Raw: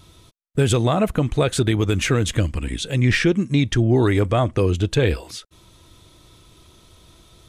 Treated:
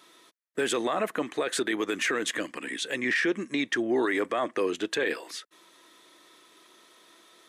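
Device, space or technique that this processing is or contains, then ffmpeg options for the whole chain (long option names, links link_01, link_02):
laptop speaker: -af "highpass=frequency=280:width=0.5412,highpass=frequency=280:width=1.3066,equalizer=frequency=1100:width_type=o:width=0.34:gain=4,equalizer=frequency=1800:width_type=o:width=0.47:gain=11,alimiter=limit=-13.5dB:level=0:latency=1:release=19,volume=-4.5dB"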